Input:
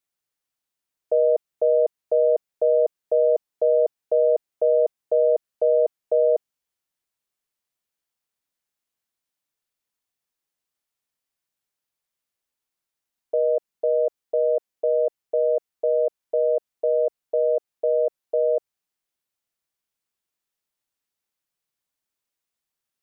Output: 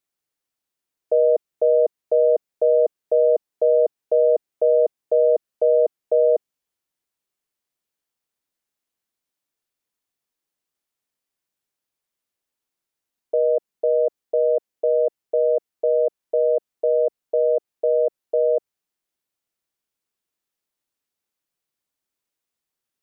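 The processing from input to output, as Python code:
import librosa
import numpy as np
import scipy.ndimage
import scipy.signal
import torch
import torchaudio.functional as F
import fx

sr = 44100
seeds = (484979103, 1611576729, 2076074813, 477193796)

y = fx.peak_eq(x, sr, hz=330.0, db=4.0, octaves=1.4)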